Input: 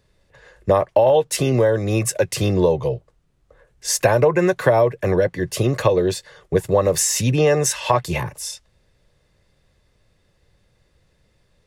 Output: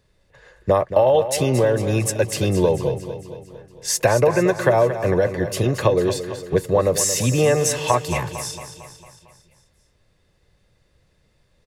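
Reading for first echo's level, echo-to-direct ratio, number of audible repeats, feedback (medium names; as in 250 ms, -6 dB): -11.0 dB, -9.5 dB, 5, 56%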